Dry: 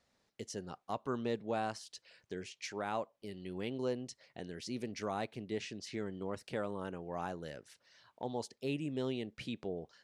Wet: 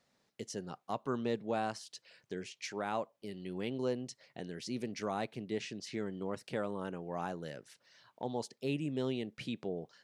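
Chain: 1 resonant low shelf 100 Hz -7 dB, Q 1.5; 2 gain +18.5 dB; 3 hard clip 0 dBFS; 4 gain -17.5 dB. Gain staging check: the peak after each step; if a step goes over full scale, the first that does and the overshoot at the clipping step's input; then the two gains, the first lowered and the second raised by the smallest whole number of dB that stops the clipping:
-22.5, -4.0, -4.0, -21.5 dBFS; no overload

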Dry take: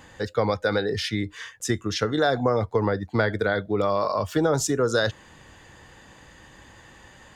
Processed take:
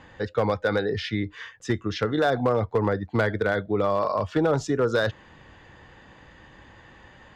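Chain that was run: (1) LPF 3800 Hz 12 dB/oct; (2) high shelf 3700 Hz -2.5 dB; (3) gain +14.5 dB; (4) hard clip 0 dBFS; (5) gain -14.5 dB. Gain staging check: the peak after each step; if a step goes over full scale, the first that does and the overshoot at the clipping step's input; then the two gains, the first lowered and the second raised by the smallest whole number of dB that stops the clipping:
-10.0, -10.0, +4.5, 0.0, -14.5 dBFS; step 3, 4.5 dB; step 3 +9.5 dB, step 5 -9.5 dB

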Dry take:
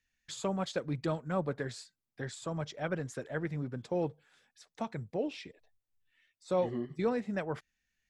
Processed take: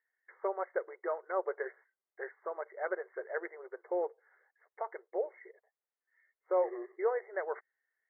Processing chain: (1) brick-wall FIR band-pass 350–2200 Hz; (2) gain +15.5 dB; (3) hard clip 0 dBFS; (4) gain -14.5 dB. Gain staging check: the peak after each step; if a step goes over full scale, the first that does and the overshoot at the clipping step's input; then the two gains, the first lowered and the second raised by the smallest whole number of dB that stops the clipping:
-20.0, -4.5, -4.5, -19.0 dBFS; no overload

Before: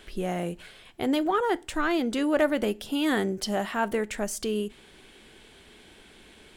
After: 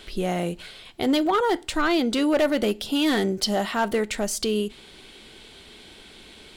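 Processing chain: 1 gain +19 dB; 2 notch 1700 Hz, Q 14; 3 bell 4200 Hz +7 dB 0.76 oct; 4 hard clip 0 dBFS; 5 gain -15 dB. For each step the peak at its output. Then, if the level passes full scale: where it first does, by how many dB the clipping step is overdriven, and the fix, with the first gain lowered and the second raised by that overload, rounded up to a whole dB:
+8.0, +8.0, +8.5, 0.0, -15.0 dBFS; step 1, 8.5 dB; step 1 +10 dB, step 5 -6 dB

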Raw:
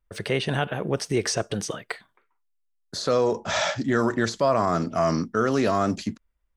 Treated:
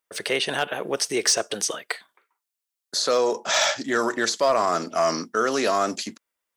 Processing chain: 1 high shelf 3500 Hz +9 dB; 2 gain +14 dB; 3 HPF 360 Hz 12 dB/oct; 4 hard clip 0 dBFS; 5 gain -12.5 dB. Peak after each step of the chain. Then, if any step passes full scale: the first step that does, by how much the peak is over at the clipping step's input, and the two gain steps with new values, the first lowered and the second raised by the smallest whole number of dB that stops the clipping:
-9.0, +5.0, +4.5, 0.0, -12.5 dBFS; step 2, 4.5 dB; step 2 +9 dB, step 5 -7.5 dB

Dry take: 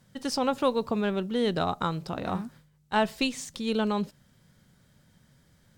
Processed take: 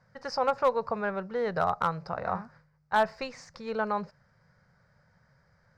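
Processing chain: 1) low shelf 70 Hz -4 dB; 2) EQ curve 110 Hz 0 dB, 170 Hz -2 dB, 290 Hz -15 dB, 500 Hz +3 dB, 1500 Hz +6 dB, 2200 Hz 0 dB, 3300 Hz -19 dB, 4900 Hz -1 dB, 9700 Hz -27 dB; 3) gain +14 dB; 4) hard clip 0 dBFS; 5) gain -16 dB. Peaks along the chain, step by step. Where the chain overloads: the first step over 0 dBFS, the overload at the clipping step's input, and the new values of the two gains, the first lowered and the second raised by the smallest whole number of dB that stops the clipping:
-12.5, -8.5, +5.5, 0.0, -16.0 dBFS; step 3, 5.5 dB; step 3 +8 dB, step 5 -10 dB

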